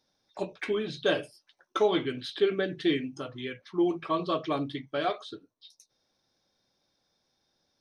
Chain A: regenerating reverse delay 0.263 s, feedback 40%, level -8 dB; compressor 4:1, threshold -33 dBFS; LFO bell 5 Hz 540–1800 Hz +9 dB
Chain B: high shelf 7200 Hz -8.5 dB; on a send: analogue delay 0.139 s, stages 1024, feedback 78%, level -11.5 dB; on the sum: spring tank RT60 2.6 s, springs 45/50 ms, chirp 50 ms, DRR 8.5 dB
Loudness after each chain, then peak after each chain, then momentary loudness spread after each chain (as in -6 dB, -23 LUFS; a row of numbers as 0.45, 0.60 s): -35.0, -30.0 LUFS; -18.5, -13.5 dBFS; 5, 13 LU